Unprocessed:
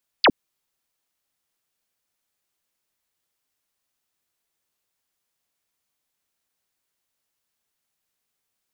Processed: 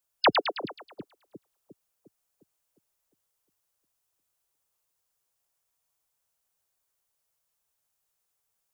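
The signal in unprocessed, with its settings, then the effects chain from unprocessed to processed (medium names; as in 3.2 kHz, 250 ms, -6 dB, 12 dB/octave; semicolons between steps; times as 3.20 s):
laser zap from 5.2 kHz, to 190 Hz, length 0.06 s sine, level -11 dB
spectral gate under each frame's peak -15 dB strong; graphic EQ 250/2000/4000 Hz -12/-6/-5 dB; on a send: two-band feedback delay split 350 Hz, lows 355 ms, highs 107 ms, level -4.5 dB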